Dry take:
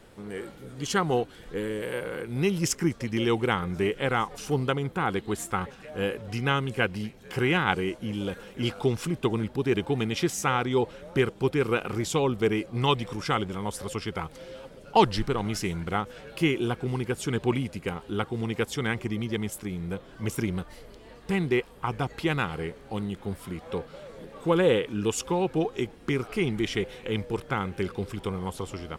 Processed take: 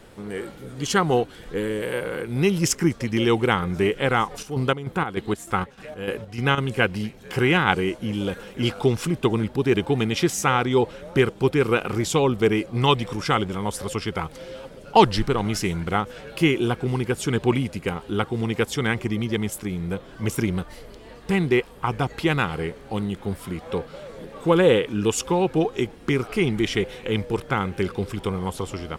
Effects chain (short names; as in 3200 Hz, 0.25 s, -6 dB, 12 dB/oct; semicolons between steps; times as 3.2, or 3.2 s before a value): 4.26–6.58 chopper 3.3 Hz, depth 65%, duty 55%; gain +5 dB